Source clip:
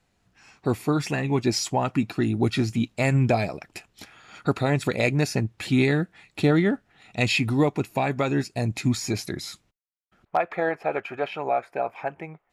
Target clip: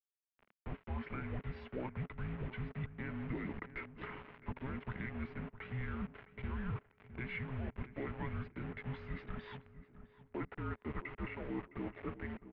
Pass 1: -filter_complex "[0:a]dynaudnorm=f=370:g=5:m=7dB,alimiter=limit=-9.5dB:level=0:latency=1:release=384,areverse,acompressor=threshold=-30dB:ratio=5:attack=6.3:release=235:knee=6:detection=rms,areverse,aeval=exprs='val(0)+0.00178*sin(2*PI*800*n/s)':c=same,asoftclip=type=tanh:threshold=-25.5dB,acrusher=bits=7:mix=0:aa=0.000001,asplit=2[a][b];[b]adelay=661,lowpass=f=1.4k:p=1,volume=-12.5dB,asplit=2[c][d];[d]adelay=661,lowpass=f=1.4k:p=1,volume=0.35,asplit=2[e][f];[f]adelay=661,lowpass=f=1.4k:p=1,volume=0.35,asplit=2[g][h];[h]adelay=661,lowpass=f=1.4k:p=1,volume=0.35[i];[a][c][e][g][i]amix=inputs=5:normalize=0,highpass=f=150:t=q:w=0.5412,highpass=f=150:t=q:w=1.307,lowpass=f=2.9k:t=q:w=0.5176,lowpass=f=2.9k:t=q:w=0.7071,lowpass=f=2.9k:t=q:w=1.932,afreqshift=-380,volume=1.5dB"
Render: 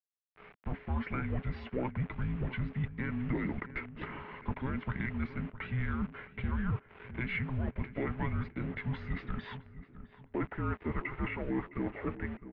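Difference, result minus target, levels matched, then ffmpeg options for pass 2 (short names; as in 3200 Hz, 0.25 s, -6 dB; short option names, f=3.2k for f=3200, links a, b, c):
compressor: peak gain reduction -8.5 dB
-filter_complex "[0:a]dynaudnorm=f=370:g=5:m=7dB,alimiter=limit=-9.5dB:level=0:latency=1:release=384,areverse,acompressor=threshold=-40.5dB:ratio=5:attack=6.3:release=235:knee=6:detection=rms,areverse,aeval=exprs='val(0)+0.00178*sin(2*PI*800*n/s)':c=same,asoftclip=type=tanh:threshold=-25.5dB,acrusher=bits=7:mix=0:aa=0.000001,asplit=2[a][b];[b]adelay=661,lowpass=f=1.4k:p=1,volume=-12.5dB,asplit=2[c][d];[d]adelay=661,lowpass=f=1.4k:p=1,volume=0.35,asplit=2[e][f];[f]adelay=661,lowpass=f=1.4k:p=1,volume=0.35,asplit=2[g][h];[h]adelay=661,lowpass=f=1.4k:p=1,volume=0.35[i];[a][c][e][g][i]amix=inputs=5:normalize=0,highpass=f=150:t=q:w=0.5412,highpass=f=150:t=q:w=1.307,lowpass=f=2.9k:t=q:w=0.5176,lowpass=f=2.9k:t=q:w=0.7071,lowpass=f=2.9k:t=q:w=1.932,afreqshift=-380,volume=1.5dB"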